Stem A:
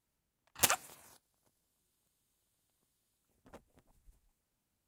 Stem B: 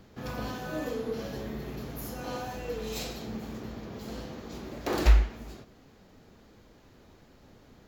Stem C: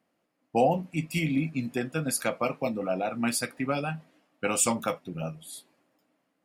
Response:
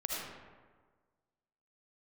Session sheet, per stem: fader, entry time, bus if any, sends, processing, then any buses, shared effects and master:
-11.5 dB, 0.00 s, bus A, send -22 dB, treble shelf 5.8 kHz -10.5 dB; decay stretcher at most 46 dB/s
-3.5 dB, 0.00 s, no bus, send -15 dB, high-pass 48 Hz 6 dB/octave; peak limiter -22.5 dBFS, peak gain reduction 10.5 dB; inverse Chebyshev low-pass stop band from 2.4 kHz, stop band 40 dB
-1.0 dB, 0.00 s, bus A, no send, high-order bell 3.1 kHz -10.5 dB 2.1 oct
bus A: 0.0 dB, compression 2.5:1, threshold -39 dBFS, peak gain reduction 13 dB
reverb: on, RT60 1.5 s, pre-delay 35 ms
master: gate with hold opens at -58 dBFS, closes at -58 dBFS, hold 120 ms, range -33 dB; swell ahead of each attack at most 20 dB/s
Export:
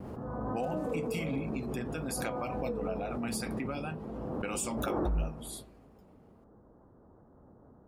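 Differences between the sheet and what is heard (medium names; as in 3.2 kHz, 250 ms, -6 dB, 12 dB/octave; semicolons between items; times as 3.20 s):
stem A -11.5 dB -> -22.0 dB; stem C: missing high-order bell 3.1 kHz -10.5 dB 2.1 oct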